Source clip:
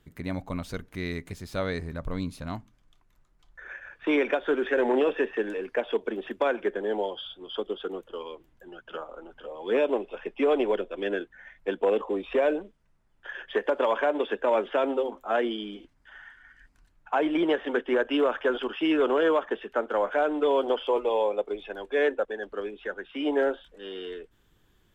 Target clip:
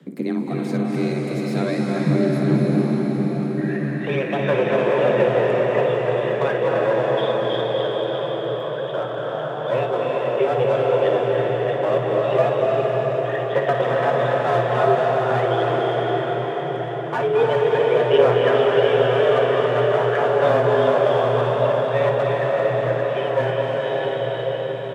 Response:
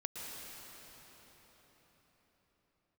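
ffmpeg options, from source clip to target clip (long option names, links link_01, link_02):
-filter_complex "[0:a]lowshelf=frequency=360:gain=8,asplit=2[link_01][link_02];[link_02]acompressor=threshold=-32dB:ratio=6,volume=2.5dB[link_03];[link_01][link_03]amix=inputs=2:normalize=0,aphaser=in_gain=1:out_gain=1:delay=3.8:decay=0.52:speed=0.44:type=sinusoidal,acrossover=split=340|1700[link_04][link_05][link_06];[link_05]aeval=exprs='clip(val(0),-1,0.0631)':channel_layout=same[link_07];[link_04][link_07][link_06]amix=inputs=3:normalize=0,afreqshift=120,aecho=1:1:20|56:0.178|0.355[link_08];[1:a]atrim=start_sample=2205,asetrate=23373,aresample=44100[link_09];[link_08][link_09]afir=irnorm=-1:irlink=0,volume=-4dB"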